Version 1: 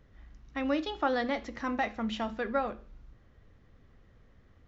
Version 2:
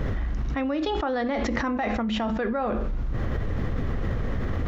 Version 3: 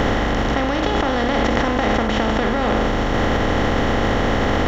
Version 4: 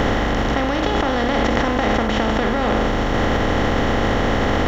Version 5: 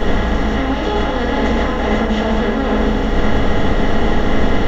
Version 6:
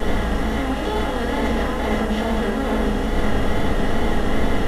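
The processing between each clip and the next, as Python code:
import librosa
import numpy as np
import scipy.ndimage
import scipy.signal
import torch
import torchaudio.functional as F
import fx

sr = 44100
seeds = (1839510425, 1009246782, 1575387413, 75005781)

y1 = fx.high_shelf(x, sr, hz=2500.0, db=-9.5)
y1 = fx.env_flatten(y1, sr, amount_pct=100)
y2 = fx.bin_compress(y1, sr, power=0.2)
y3 = fx.quant_dither(y2, sr, seeds[0], bits=10, dither='none')
y4 = fx.room_shoebox(y3, sr, seeds[1], volume_m3=35.0, walls='mixed', distance_m=1.4)
y4 = F.gain(torch.from_numpy(y4), -9.0).numpy()
y5 = fx.delta_mod(y4, sr, bps=64000, step_db=-31.0)
y5 = fx.vibrato(y5, sr, rate_hz=2.3, depth_cents=44.0)
y5 = F.gain(torch.from_numpy(y5), -5.0).numpy()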